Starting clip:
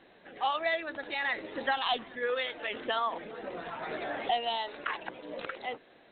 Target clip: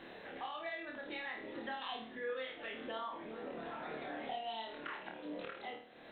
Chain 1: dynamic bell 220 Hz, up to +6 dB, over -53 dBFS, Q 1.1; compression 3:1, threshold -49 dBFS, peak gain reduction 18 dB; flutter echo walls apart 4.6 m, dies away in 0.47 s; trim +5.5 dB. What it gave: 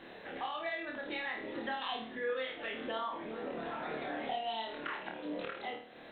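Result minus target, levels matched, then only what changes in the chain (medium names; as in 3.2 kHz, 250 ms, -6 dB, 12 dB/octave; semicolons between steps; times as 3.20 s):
compression: peak gain reduction -4.5 dB
change: compression 3:1, threshold -56 dBFS, peak gain reduction 22.5 dB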